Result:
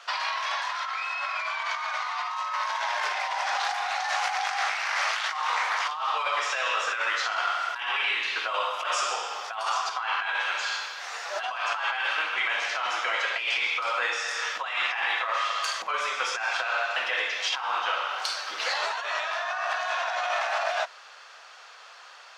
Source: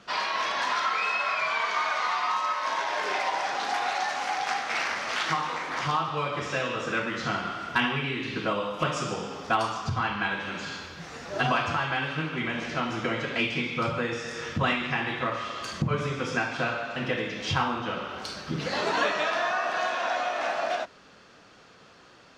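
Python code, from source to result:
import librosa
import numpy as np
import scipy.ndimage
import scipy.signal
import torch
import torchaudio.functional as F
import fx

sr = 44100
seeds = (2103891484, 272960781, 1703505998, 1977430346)

y = scipy.signal.sosfilt(scipy.signal.butter(4, 710.0, 'highpass', fs=sr, output='sos'), x)
y = fx.over_compress(y, sr, threshold_db=-33.0, ratio=-1.0)
y = y * librosa.db_to_amplitude(4.5)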